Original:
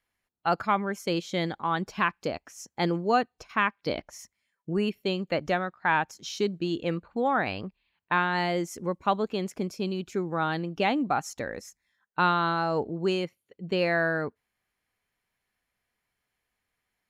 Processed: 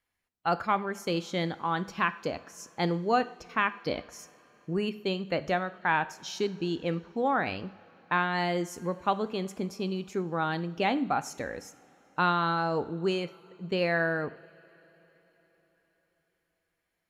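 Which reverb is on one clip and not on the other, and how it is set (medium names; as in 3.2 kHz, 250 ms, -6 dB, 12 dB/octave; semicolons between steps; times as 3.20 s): two-slope reverb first 0.54 s, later 4.4 s, from -19 dB, DRR 12 dB; trim -2 dB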